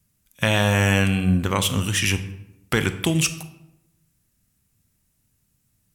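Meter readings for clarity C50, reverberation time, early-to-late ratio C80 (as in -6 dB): 13.0 dB, 0.90 s, 15.5 dB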